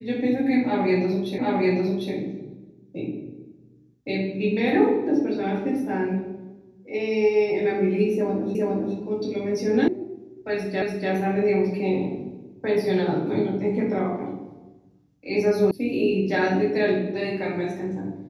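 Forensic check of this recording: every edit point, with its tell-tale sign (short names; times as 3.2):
1.38 repeat of the last 0.75 s
8.55 repeat of the last 0.41 s
9.88 sound cut off
10.82 repeat of the last 0.29 s
15.71 sound cut off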